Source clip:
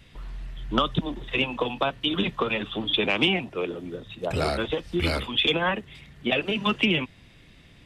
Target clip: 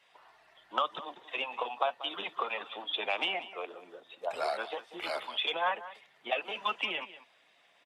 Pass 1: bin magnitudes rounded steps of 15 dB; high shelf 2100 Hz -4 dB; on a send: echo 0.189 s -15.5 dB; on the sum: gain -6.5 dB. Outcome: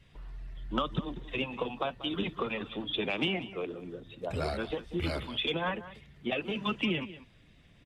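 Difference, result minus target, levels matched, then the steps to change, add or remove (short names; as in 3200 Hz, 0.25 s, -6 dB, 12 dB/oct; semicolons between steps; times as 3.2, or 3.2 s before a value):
1000 Hz band -5.0 dB
add after bin magnitudes rounded: resonant high-pass 760 Hz, resonance Q 2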